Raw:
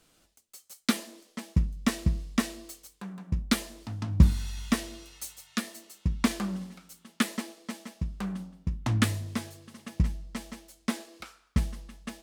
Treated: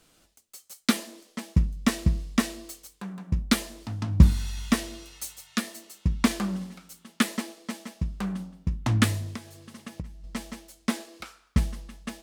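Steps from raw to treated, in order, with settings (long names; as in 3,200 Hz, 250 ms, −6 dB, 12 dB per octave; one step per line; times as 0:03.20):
0:09.30–0:10.24: downward compressor 6 to 1, threshold −38 dBFS, peak gain reduction 17.5 dB
level +3 dB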